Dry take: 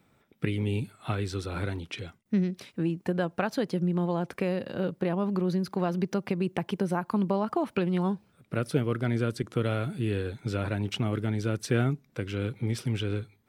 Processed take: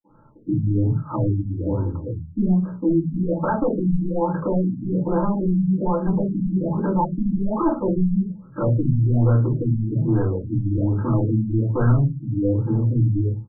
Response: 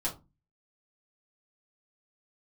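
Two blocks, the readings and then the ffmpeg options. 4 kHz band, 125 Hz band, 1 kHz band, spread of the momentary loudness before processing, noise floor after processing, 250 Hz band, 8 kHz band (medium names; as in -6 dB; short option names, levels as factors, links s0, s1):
under -40 dB, +10.5 dB, +7.0 dB, 6 LU, -44 dBFS, +8.5 dB, under -30 dB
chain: -filter_complex "[0:a]asuperstop=centerf=730:order=12:qfactor=4.9,equalizer=f=840:t=o:w=0.39:g=3.5,acrossover=split=210|2300[s0][s1][s2];[s1]adelay=40[s3];[s0]adelay=90[s4];[s4][s3][s2]amix=inputs=3:normalize=0,aresample=16000,asoftclip=type=hard:threshold=0.0596,aresample=44100[s5];[1:a]atrim=start_sample=2205[s6];[s5][s6]afir=irnorm=-1:irlink=0,asplit=2[s7][s8];[s8]alimiter=limit=0.0841:level=0:latency=1,volume=1.26[s9];[s7][s9]amix=inputs=2:normalize=0,afftfilt=real='re*lt(b*sr/1024,290*pow(1700/290,0.5+0.5*sin(2*PI*1.2*pts/sr)))':imag='im*lt(b*sr/1024,290*pow(1700/290,0.5+0.5*sin(2*PI*1.2*pts/sr)))':win_size=1024:overlap=0.75"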